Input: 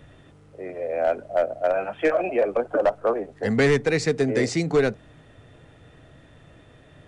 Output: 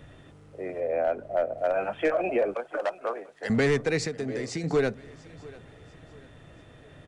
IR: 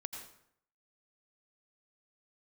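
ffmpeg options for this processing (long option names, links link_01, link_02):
-filter_complex "[0:a]asettb=1/sr,asplit=3[link_01][link_02][link_03];[link_01]atrim=end=0.804[link_04];[link_02]atrim=start=0.8:end=1.58,asetpts=PTS-STARTPTS,afade=type=in:duration=0.004:curve=qsin,afade=type=out:start_time=0.776:duration=0.004:curve=qsin,highshelf=frequency=3700:gain=-8.5[link_05];[link_03]atrim=start=1.576[link_06];[link_04][link_05]acrossfade=duration=0.004:curve1=hsin:curve2=qsin[link_07];[link_07][link_06]acrossfade=duration=0.004:curve1=qsin:curve2=hsin,asettb=1/sr,asplit=3[link_08][link_09][link_10];[link_08]atrim=end=2.544[link_11];[link_09]atrim=start=2.54:end=3.5,asetpts=PTS-STARTPTS,afade=type=in:duration=0.004:curve=qsin,afade=type=out:start_time=0.956:duration=0.004:curve=qsin,highpass=frequency=1500:poles=1[link_12];[link_10]atrim=start=3.496[link_13];[link_11][link_12]acrossfade=duration=0.004:curve1=hsin:curve2=qsin[link_14];[link_14][link_13]acrossfade=duration=0.004:curve1=qsin:curve2=hsin,alimiter=limit=-17dB:level=0:latency=1:release=149,asettb=1/sr,asplit=3[link_15][link_16][link_17];[link_15]atrim=end=4.054[link_18];[link_16]atrim=start=4.05:end=4.64,asetpts=PTS-STARTPTS,afade=type=in:duration=0.004:curve=qsin,afade=type=out:start_time=0.586:duration=0.004:curve=qsin,acompressor=threshold=-29dB:ratio=6[link_19];[link_17]atrim=start=4.636[link_20];[link_18][link_19]acrossfade=duration=0.004:curve1=hsin:curve2=qsin[link_21];[link_21][link_20]acrossfade=duration=0.004:curve1=qsin:curve2=hsin,aecho=1:1:692|1384|2076:0.0891|0.0374|0.0157"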